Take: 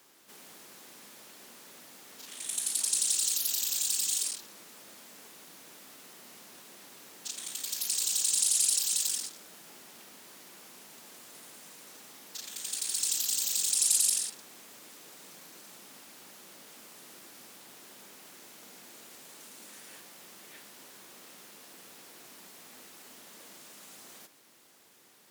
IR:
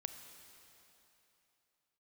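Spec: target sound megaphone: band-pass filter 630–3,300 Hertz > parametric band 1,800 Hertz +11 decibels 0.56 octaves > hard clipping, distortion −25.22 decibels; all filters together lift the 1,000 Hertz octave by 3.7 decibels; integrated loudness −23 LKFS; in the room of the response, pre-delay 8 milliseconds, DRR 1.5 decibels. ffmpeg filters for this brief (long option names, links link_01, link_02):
-filter_complex "[0:a]equalizer=frequency=1000:width_type=o:gain=3.5,asplit=2[link_01][link_02];[1:a]atrim=start_sample=2205,adelay=8[link_03];[link_02][link_03]afir=irnorm=-1:irlink=0,volume=1dB[link_04];[link_01][link_04]amix=inputs=2:normalize=0,highpass=630,lowpass=3300,equalizer=frequency=1800:width_type=o:width=0.56:gain=11,asoftclip=type=hard:threshold=-30dB,volume=18.5dB"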